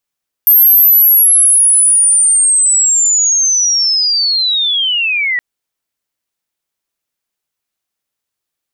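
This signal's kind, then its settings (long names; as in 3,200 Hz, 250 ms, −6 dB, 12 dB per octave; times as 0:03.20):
glide linear 13,000 Hz → 1,900 Hz −3.5 dBFS → −12 dBFS 4.92 s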